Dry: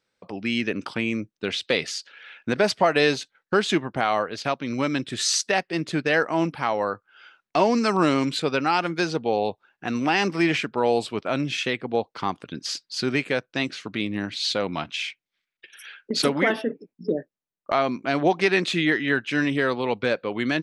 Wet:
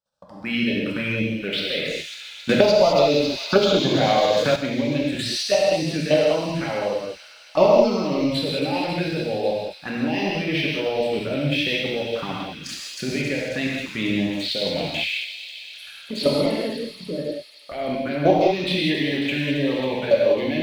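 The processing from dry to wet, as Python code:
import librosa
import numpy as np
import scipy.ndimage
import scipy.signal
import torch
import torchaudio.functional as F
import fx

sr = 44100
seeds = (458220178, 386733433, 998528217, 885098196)

y = fx.peak_eq(x, sr, hz=590.0, db=9.5, octaves=0.27)
y = fx.leveller(y, sr, passes=1)
y = fx.level_steps(y, sr, step_db=13)
y = fx.env_phaser(y, sr, low_hz=360.0, high_hz=1700.0, full_db=-21.0)
y = fx.echo_wet_highpass(y, sr, ms=272, feedback_pct=72, hz=3100.0, wet_db=-7)
y = fx.rev_gated(y, sr, seeds[0], gate_ms=230, shape='flat', drr_db=-4.5)
y = fx.band_squash(y, sr, depth_pct=100, at=(2.49, 4.56))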